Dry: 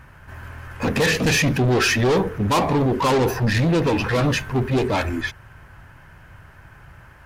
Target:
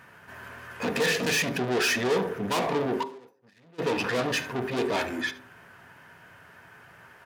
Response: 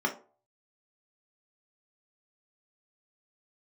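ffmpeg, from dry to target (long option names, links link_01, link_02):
-filter_complex "[0:a]aecho=1:1:76:0.112,asoftclip=type=tanh:threshold=-20.5dB,asplit=3[link_01][link_02][link_03];[link_01]afade=type=out:start_time=3.02:duration=0.02[link_04];[link_02]agate=range=-47dB:threshold=-20dB:ratio=16:detection=peak,afade=type=in:start_time=3.02:duration=0.02,afade=type=out:start_time=3.78:duration=0.02[link_05];[link_03]afade=type=in:start_time=3.78:duration=0.02[link_06];[link_04][link_05][link_06]amix=inputs=3:normalize=0,highpass=280,asplit=2[link_07][link_08];[1:a]atrim=start_sample=2205,asetrate=29547,aresample=44100[link_09];[link_08][link_09]afir=irnorm=-1:irlink=0,volume=-19dB[link_10];[link_07][link_10]amix=inputs=2:normalize=0"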